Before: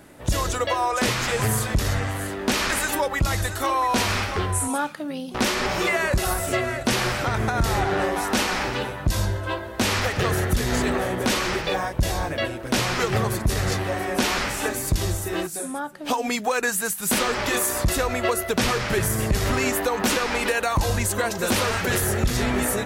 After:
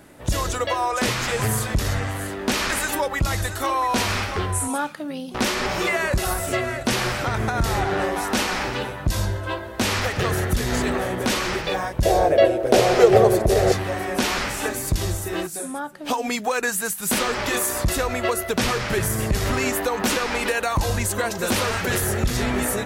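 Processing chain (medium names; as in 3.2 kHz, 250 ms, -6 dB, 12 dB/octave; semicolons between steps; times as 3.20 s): 12.05–13.72 s: high-order bell 520 Hz +14 dB 1.3 oct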